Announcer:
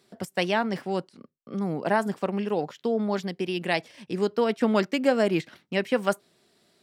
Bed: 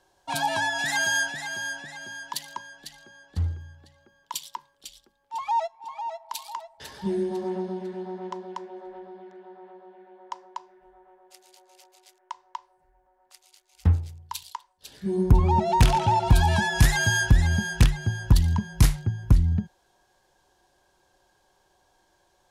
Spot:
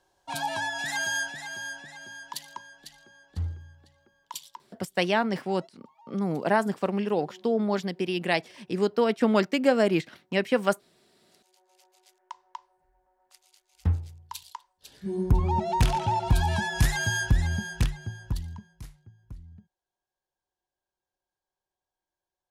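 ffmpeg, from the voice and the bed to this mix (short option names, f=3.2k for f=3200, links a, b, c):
-filter_complex "[0:a]adelay=4600,volume=0.5dB[a];[1:a]volume=14dB,afade=t=out:st=4.28:d=0.62:silence=0.11885,afade=t=in:st=11.04:d=1.11:silence=0.11885,afade=t=out:st=17.44:d=1.35:silence=0.0891251[b];[a][b]amix=inputs=2:normalize=0"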